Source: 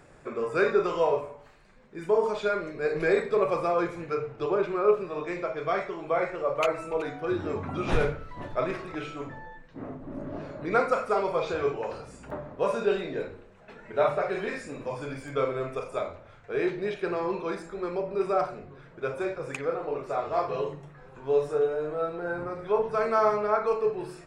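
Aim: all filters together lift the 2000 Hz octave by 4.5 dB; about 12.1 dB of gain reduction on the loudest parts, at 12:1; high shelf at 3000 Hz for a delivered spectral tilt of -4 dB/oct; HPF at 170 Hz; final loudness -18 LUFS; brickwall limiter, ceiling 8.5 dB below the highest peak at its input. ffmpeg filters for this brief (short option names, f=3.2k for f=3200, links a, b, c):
-af "highpass=170,equalizer=f=2k:t=o:g=7.5,highshelf=f=3k:g=-3.5,acompressor=threshold=-29dB:ratio=12,volume=19dB,alimiter=limit=-7.5dB:level=0:latency=1"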